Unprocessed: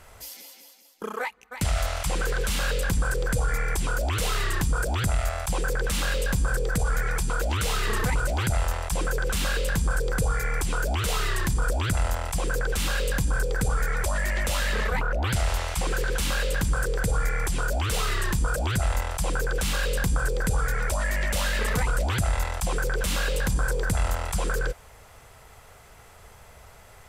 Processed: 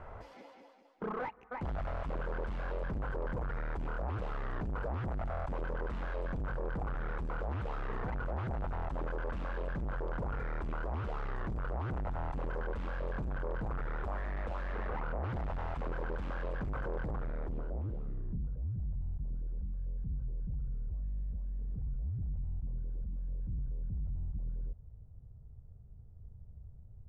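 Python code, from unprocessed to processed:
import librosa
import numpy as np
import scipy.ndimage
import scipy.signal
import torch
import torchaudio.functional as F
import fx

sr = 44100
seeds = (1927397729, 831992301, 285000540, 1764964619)

y = fx.rider(x, sr, range_db=3, speed_s=0.5)
y = np.clip(10.0 ** (34.0 / 20.0) * y, -1.0, 1.0) / 10.0 ** (34.0 / 20.0)
y = fx.filter_sweep_lowpass(y, sr, from_hz=1100.0, to_hz=130.0, start_s=17.0, end_s=18.65, q=1.0)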